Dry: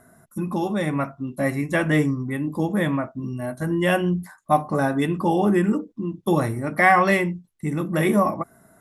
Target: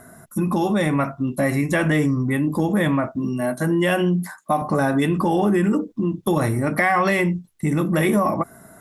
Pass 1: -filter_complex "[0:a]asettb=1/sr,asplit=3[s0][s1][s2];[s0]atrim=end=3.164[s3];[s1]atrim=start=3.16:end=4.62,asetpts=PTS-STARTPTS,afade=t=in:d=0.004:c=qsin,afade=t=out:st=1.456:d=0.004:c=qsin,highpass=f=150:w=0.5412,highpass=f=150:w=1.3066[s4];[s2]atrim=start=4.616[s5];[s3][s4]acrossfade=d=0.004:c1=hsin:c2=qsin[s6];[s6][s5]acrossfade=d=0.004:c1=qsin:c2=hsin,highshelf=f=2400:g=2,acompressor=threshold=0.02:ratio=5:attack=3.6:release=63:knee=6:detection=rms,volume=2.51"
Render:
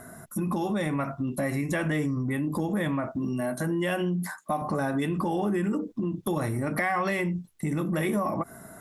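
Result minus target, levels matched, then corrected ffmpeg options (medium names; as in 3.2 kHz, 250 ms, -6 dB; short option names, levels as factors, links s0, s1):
compression: peak gain reduction +8.5 dB
-filter_complex "[0:a]asettb=1/sr,asplit=3[s0][s1][s2];[s0]atrim=end=3.164[s3];[s1]atrim=start=3.16:end=4.62,asetpts=PTS-STARTPTS,afade=t=in:d=0.004:c=qsin,afade=t=out:st=1.456:d=0.004:c=qsin,highpass=f=150:w=0.5412,highpass=f=150:w=1.3066[s4];[s2]atrim=start=4.616[s5];[s3][s4]acrossfade=d=0.004:c1=hsin:c2=qsin[s6];[s6][s5]acrossfade=d=0.004:c1=qsin:c2=hsin,highshelf=f=2400:g=2,acompressor=threshold=0.0668:ratio=5:attack=3.6:release=63:knee=6:detection=rms,volume=2.51"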